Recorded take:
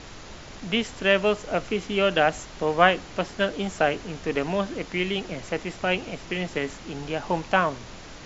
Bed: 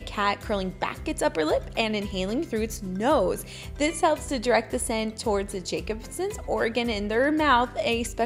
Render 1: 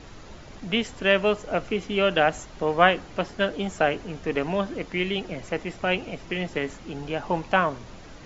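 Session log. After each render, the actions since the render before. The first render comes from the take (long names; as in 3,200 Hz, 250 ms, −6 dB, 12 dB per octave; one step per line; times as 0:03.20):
broadband denoise 7 dB, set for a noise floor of −43 dBFS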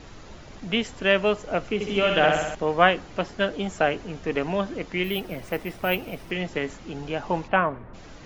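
0:01.74–0:02.55: flutter between parallel walls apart 11.1 metres, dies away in 1 s
0:05.04–0:06.31: bad sample-rate conversion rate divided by 3×, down filtered, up hold
0:07.47–0:07.93: low-pass filter 3,200 Hz → 1,700 Hz 24 dB per octave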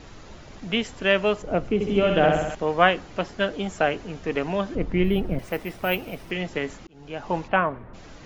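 0:01.42–0:02.50: tilt shelving filter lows +6 dB, about 770 Hz
0:04.75–0:05.39: spectral tilt −3.5 dB per octave
0:06.87–0:07.35: fade in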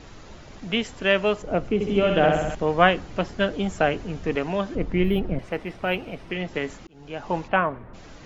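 0:02.44–0:04.36: low-shelf EQ 220 Hz +7 dB
0:05.19–0:06.54: high-frequency loss of the air 90 metres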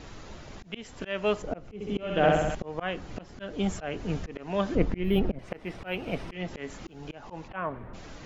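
speech leveller 2 s
volume swells 327 ms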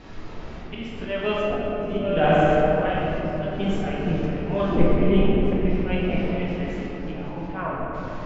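high-frequency loss of the air 130 metres
rectangular room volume 220 cubic metres, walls hard, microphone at 1 metre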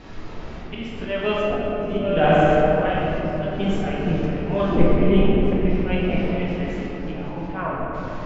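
level +2 dB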